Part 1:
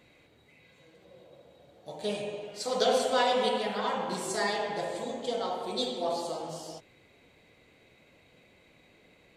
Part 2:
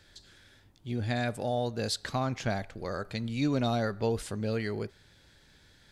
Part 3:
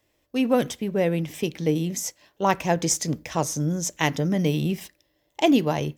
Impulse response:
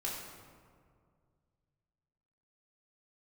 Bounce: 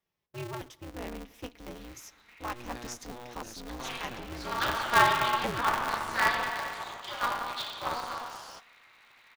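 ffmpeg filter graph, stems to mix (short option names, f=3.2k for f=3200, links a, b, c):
-filter_complex "[0:a]acrossover=split=3400[a][b];[b]acompressor=threshold=-48dB:ratio=4:attack=1:release=60[c];[a][c]amix=inputs=2:normalize=0,highpass=f=1.3k:t=q:w=2.9,adelay=1800,volume=1.5dB,asplit=2[d][e];[e]volume=-22dB[f];[1:a]adelay=1650,volume=-14dB[g];[2:a]flanger=delay=3.9:depth=2:regen=23:speed=0.46:shape=triangular,volume=-12.5dB,asplit=3[h][i][j];[i]volume=-21.5dB[k];[j]apad=whole_len=492231[l];[d][l]sidechaincompress=threshold=-40dB:ratio=8:attack=34:release=201[m];[3:a]atrim=start_sample=2205[n];[f][k]amix=inputs=2:normalize=0[o];[o][n]afir=irnorm=-1:irlink=0[p];[m][g][h][p]amix=inputs=4:normalize=0,equalizer=f=160:t=o:w=0.33:g=-4,equalizer=f=500:t=o:w=0.33:g=-10,equalizer=f=1k:t=o:w=0.33:g=7,equalizer=f=8k:t=o:w=0.33:g=-10,aeval=exprs='val(0)*sgn(sin(2*PI*120*n/s))':c=same"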